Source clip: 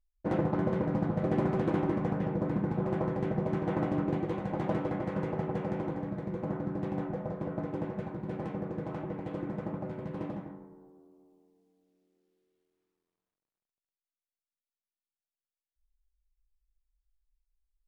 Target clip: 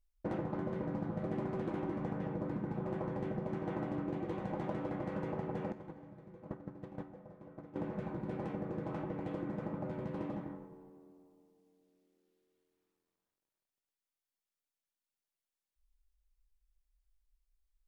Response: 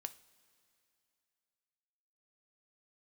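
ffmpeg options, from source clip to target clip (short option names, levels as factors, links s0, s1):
-filter_complex "[0:a]asettb=1/sr,asplit=3[s0][s1][s2];[s0]atrim=end=5.724[s3];[s1]atrim=start=5.72:end=7.76,asetpts=PTS-STARTPTS,afade=t=in:d=0.004:c=qsin,afade=t=out:st=2.036:d=0.004:c=qsin,agate=range=0.126:threshold=0.0316:ratio=16:detection=peak[s4];[s2]atrim=start=7.756[s5];[s3][s4]acrossfade=d=0.004:c1=hsin:c2=qsin[s6];[s6][s5]acrossfade=d=0.004:c1=qsin:c2=hsin[s7];[1:a]atrim=start_sample=2205,asetrate=52920,aresample=44100[s8];[s7][s8]afir=irnorm=-1:irlink=0,acompressor=threshold=0.00891:ratio=4,volume=1.88"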